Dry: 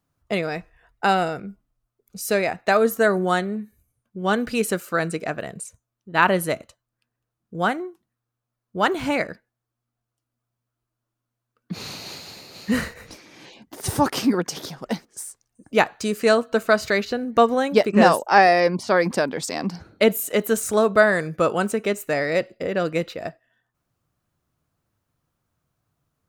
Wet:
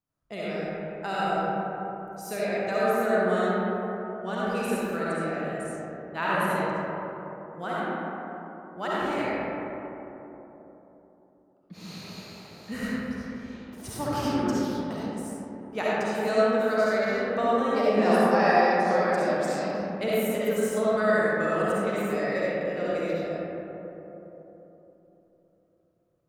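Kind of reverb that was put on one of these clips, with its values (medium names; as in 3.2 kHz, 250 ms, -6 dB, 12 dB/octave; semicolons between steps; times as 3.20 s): algorithmic reverb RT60 3.7 s, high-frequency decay 0.3×, pre-delay 25 ms, DRR -9 dB; trim -15 dB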